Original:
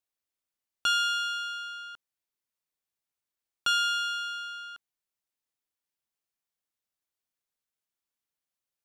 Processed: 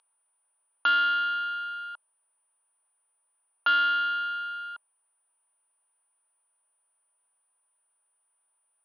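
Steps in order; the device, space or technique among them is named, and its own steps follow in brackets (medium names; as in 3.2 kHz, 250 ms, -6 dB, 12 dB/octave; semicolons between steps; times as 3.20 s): toy sound module (decimation joined by straight lines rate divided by 6×; class-D stage that switches slowly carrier 9.4 kHz; cabinet simulation 590–3800 Hz, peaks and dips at 630 Hz +4 dB, 940 Hz +9 dB, 1.4 kHz +3 dB, 2 kHz -6 dB); trim +3 dB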